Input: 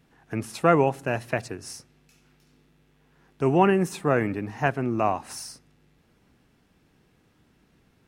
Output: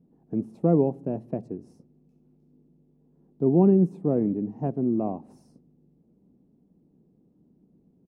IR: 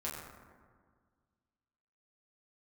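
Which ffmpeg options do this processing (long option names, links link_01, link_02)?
-af "firequalizer=gain_entry='entry(100,0);entry(180,14);entry(1500,-23)':delay=0.05:min_phase=1,volume=-8dB"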